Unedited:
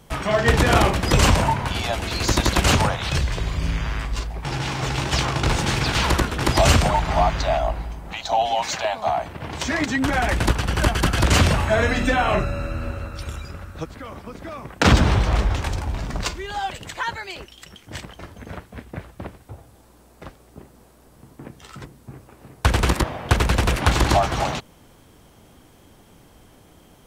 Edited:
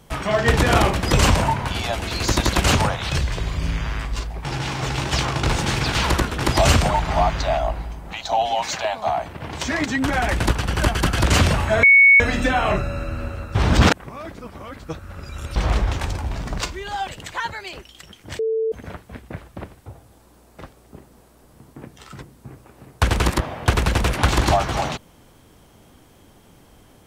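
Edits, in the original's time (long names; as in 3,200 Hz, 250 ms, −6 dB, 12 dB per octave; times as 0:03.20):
0:11.83: insert tone 2,220 Hz −7.5 dBFS 0.37 s
0:13.18–0:15.19: reverse
0:18.02–0:18.35: beep over 445 Hz −18.5 dBFS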